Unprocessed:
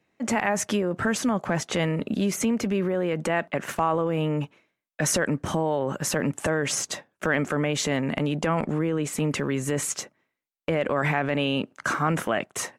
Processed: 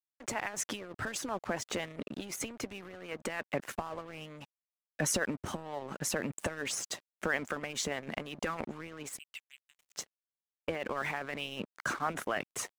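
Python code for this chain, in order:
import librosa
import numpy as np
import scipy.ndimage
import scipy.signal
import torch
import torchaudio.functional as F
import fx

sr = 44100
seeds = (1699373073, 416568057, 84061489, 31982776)

y = fx.ladder_bandpass(x, sr, hz=3000.0, resonance_pct=65, at=(9.17, 9.94), fade=0.02)
y = fx.hpss(y, sr, part='harmonic', gain_db=-15)
y = np.sign(y) * np.maximum(np.abs(y) - 10.0 ** (-43.5 / 20.0), 0.0)
y = y * librosa.db_to_amplitude(-4.5)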